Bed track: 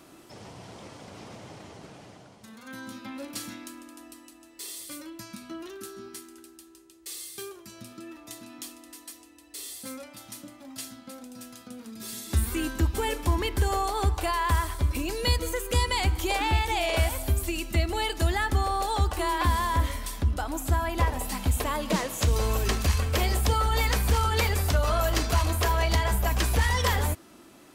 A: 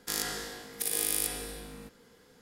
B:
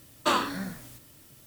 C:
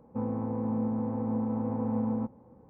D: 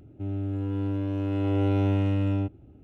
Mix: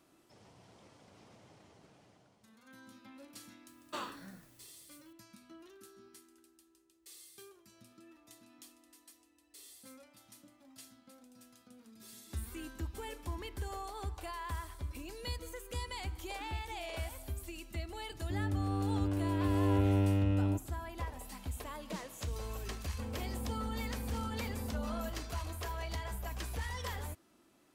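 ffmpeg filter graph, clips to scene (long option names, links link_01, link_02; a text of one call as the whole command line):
ffmpeg -i bed.wav -i cue0.wav -i cue1.wav -i cue2.wav -i cue3.wav -filter_complex "[0:a]volume=-15.5dB[link_01];[2:a]atrim=end=1.46,asetpts=PTS-STARTPTS,volume=-16.5dB,afade=type=in:duration=0.004:curve=hsin,afade=type=out:start_time=1.456:duration=0.004:curve=hsin,adelay=3670[link_02];[4:a]atrim=end=2.83,asetpts=PTS-STARTPTS,volume=-5dB,afade=type=in:duration=0.004:curve=hsin,afade=type=out:start_time=2.826:duration=0.004:curve=hsin,adelay=18100[link_03];[3:a]atrim=end=2.69,asetpts=PTS-STARTPTS,volume=-12.5dB,afade=type=in:duration=0.004:curve=hsin,afade=type=out:start_time=2.686:duration=0.004:curve=hsin,adelay=22830[link_04];[link_01][link_02][link_03][link_04]amix=inputs=4:normalize=0" out.wav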